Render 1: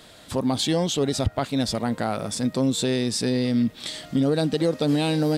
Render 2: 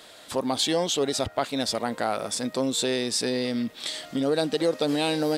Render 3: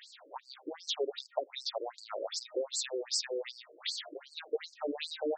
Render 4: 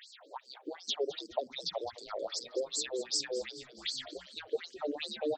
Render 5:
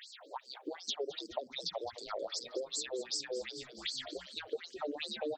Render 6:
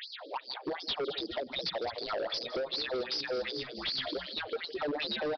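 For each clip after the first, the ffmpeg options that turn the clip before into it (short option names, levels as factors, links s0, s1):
-af "bass=f=250:g=-14,treble=f=4000:g=0,volume=1.12"
-af "acompressor=threshold=0.0398:ratio=3,afftfilt=real='re*between(b*sr/1024,400*pow(6100/400,0.5+0.5*sin(2*PI*2.6*pts/sr))/1.41,400*pow(6100/400,0.5+0.5*sin(2*PI*2.6*pts/sr))*1.41)':imag='im*between(b*sr/1024,400*pow(6100/400,0.5+0.5*sin(2*PI*2.6*pts/sr))/1.41,400*pow(6100/400,0.5+0.5*sin(2*PI*2.6*pts/sr))*1.41)':win_size=1024:overlap=0.75"
-filter_complex "[0:a]asplit=6[s0][s1][s2][s3][s4][s5];[s1]adelay=211,afreqshift=-80,volume=0.158[s6];[s2]adelay=422,afreqshift=-160,volume=0.0902[s7];[s3]adelay=633,afreqshift=-240,volume=0.0513[s8];[s4]adelay=844,afreqshift=-320,volume=0.0295[s9];[s5]adelay=1055,afreqshift=-400,volume=0.0168[s10];[s0][s6][s7][s8][s9][s10]amix=inputs=6:normalize=0"
-af "acompressor=threshold=0.0126:ratio=3,volume=1.26"
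-af "aecho=1:1:159:0.0944,aresample=11025,asoftclip=type=hard:threshold=0.0112,aresample=44100,volume=2.82"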